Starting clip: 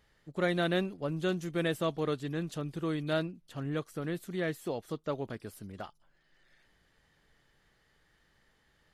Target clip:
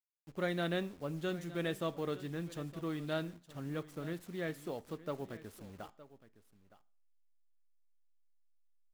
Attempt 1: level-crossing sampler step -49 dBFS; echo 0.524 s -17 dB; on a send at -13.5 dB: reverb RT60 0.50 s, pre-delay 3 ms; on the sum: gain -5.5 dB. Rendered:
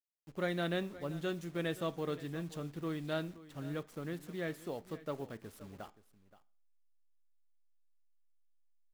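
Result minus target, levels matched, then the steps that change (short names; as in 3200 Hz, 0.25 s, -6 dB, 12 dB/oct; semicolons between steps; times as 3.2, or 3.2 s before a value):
echo 0.391 s early
change: echo 0.915 s -17 dB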